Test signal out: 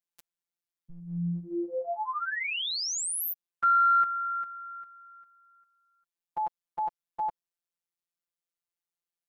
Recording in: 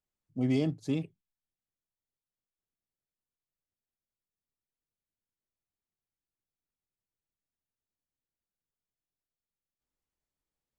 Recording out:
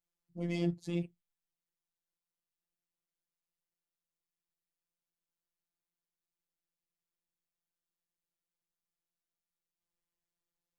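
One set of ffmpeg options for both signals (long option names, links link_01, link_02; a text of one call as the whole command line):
ffmpeg -i in.wav -af "afftfilt=real='hypot(re,im)*cos(PI*b)':imag='0':win_size=1024:overlap=0.75,acontrast=36,volume=-4.5dB" out.wav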